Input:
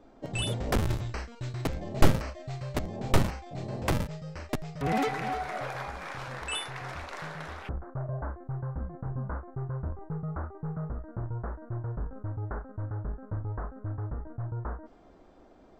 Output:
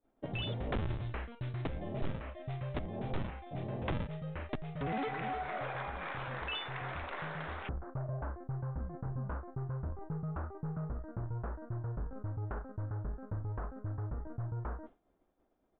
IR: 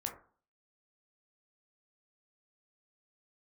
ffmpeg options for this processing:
-af "agate=range=-33dB:threshold=-41dB:ratio=3:detection=peak,acompressor=threshold=-41dB:ratio=2,aresample=8000,asoftclip=type=tanh:threshold=-29.5dB,aresample=44100,volume=2.5dB"

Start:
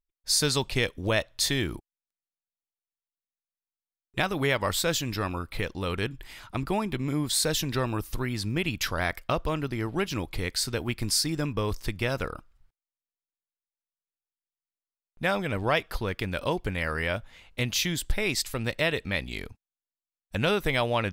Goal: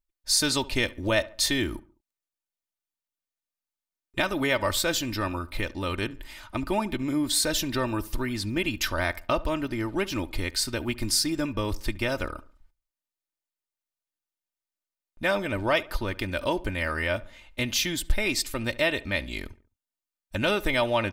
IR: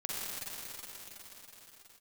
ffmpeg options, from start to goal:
-filter_complex "[0:a]aecho=1:1:3.3:0.58,asplit=2[link_01][link_02];[link_02]adelay=70,lowpass=frequency=2100:poles=1,volume=-19dB,asplit=2[link_03][link_04];[link_04]adelay=70,lowpass=frequency=2100:poles=1,volume=0.43,asplit=2[link_05][link_06];[link_06]adelay=70,lowpass=frequency=2100:poles=1,volume=0.43[link_07];[link_01][link_03][link_05][link_07]amix=inputs=4:normalize=0"

